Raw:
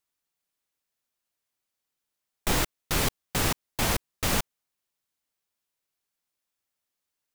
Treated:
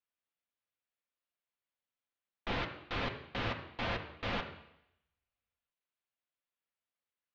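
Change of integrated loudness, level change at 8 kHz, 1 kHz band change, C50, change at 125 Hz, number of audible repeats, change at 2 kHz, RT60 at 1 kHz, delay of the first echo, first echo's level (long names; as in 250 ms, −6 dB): −10.5 dB, −34.5 dB, −7.0 dB, 9.0 dB, −10.0 dB, no echo audible, −6.5 dB, 0.80 s, no echo audible, no echo audible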